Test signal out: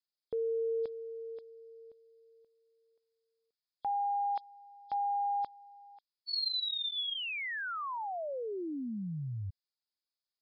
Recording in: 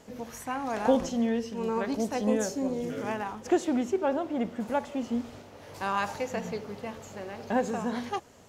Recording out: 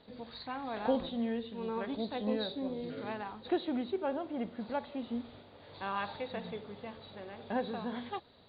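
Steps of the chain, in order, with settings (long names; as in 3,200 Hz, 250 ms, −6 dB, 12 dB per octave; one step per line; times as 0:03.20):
hearing-aid frequency compression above 3,200 Hz 4 to 1
level −7 dB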